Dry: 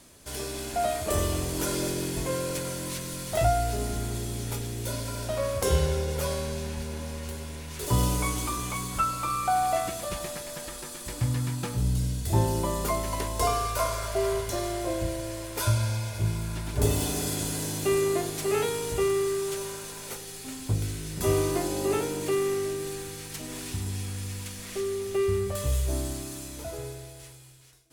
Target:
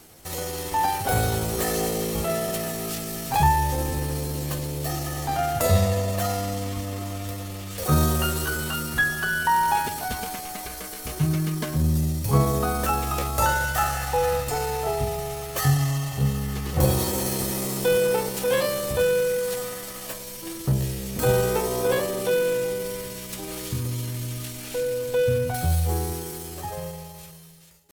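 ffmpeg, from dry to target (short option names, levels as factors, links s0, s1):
-af "asetrate=55563,aresample=44100,atempo=0.793701,volume=1.58"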